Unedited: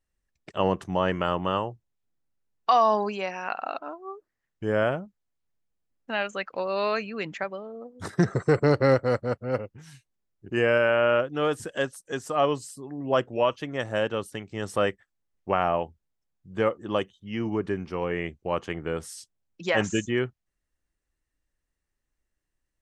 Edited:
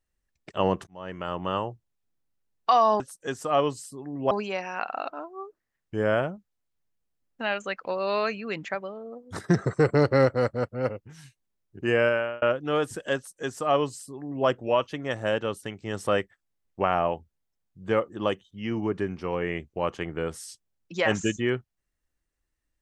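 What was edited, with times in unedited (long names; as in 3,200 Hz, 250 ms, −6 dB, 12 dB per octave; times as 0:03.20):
0:00.87–0:01.69: fade in
0:10.73–0:11.11: fade out
0:11.85–0:13.16: duplicate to 0:03.00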